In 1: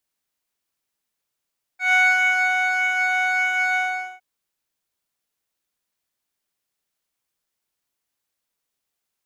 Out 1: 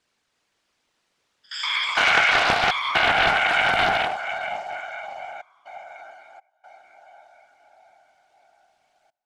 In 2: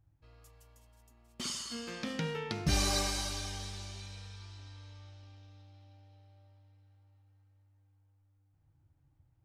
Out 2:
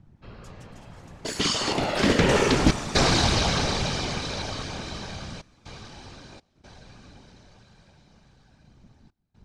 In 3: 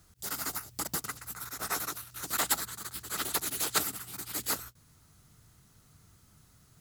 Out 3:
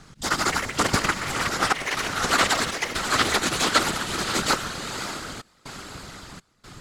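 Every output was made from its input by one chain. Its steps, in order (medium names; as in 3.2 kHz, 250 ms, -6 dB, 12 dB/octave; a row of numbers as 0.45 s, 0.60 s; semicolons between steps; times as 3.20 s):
bass shelf 140 Hz -3 dB; peak limiter -17.5 dBFS; compression 4:1, threshold -30 dBFS; echo that smears into a reverb 572 ms, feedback 56%, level -8 dB; trance gate "xxxxxxx.xxx.xxx" 61 bpm -24 dB; whisper effect; ever faster or slower copies 318 ms, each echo +7 st, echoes 3, each echo -6 dB; distance through air 96 m; loudspeaker Doppler distortion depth 0.34 ms; peak normalisation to -6 dBFS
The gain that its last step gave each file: +14.0 dB, +17.0 dB, +17.5 dB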